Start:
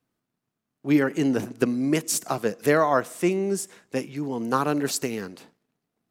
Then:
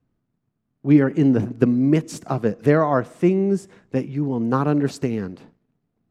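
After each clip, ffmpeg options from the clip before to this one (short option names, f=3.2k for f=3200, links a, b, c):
-af "aemphasis=mode=reproduction:type=riaa"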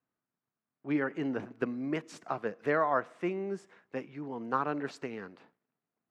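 -af "bandpass=f=1.5k:t=q:w=0.76:csg=0,volume=-4.5dB"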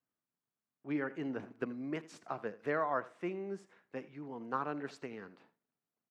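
-af "aecho=1:1:81:0.119,volume=-5.5dB"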